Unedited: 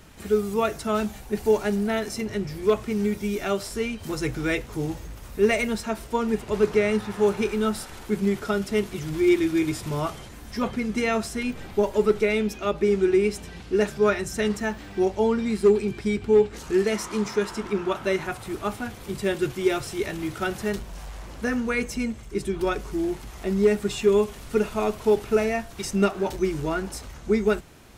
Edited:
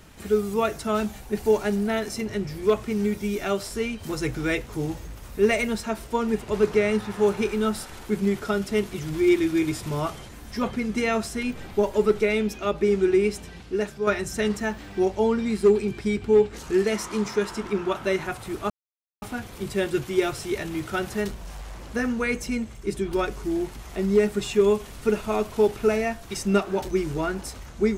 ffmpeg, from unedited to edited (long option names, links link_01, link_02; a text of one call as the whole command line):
ffmpeg -i in.wav -filter_complex "[0:a]asplit=3[link_01][link_02][link_03];[link_01]atrim=end=14.07,asetpts=PTS-STARTPTS,afade=type=out:start_time=13.28:duration=0.79:silence=0.421697[link_04];[link_02]atrim=start=14.07:end=18.7,asetpts=PTS-STARTPTS,afade=type=in:duration=0.004:curve=hsin:silence=0.421697,afade=type=out:start_time=4.626:duration=0.004:curve=hsin,apad=pad_dur=0.52[link_05];[link_03]atrim=start=18.7,asetpts=PTS-STARTPTS,afade=type=in:duration=0.004:curve=hsin[link_06];[link_04][link_05][link_06]concat=n=3:v=0:a=1" out.wav